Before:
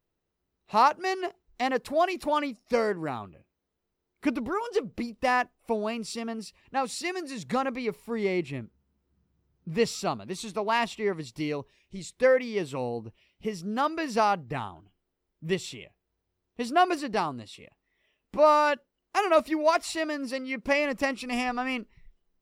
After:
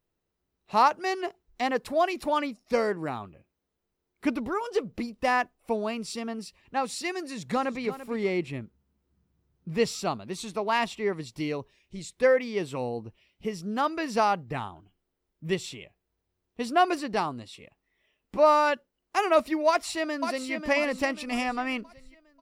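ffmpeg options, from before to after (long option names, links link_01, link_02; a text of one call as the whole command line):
ffmpeg -i in.wav -filter_complex "[0:a]asplit=2[link_01][link_02];[link_02]afade=type=in:start_time=7.22:duration=0.01,afade=type=out:start_time=7.82:duration=0.01,aecho=0:1:340|680:0.237137|0.0355706[link_03];[link_01][link_03]amix=inputs=2:normalize=0,asplit=2[link_04][link_05];[link_05]afade=type=in:start_time=19.68:duration=0.01,afade=type=out:start_time=20.52:duration=0.01,aecho=0:1:540|1080|1620|2160|2700:0.446684|0.178673|0.0714694|0.0285877|0.0114351[link_06];[link_04][link_06]amix=inputs=2:normalize=0" out.wav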